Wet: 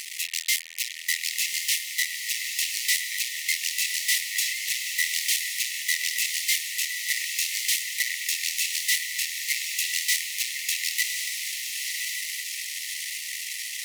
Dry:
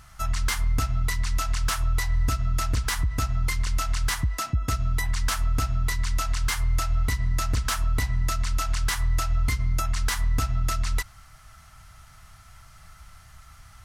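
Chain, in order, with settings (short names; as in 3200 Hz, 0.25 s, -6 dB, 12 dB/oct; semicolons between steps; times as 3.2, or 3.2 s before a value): fuzz box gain 46 dB, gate -49 dBFS; brick-wall FIR high-pass 1800 Hz; on a send: diffused feedback echo 1.134 s, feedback 53%, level -4 dB; on the sum: gain -6 dB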